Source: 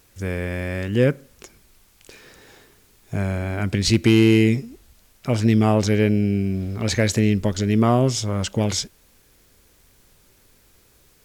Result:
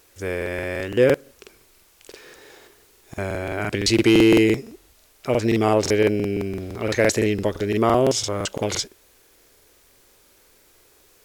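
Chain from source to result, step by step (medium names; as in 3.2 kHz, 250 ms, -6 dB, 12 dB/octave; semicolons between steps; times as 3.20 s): resonant low shelf 270 Hz -8 dB, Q 1.5; crackling interface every 0.17 s, samples 2048, repeat, from 0.37 s; trim +1.5 dB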